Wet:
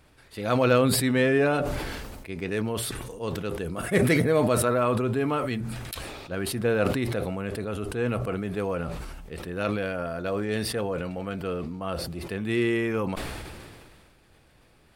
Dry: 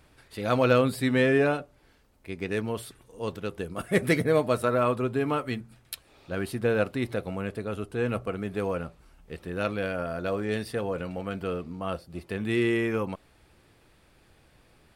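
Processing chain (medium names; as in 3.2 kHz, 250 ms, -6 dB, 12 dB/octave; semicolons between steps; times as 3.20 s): decay stretcher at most 28 dB/s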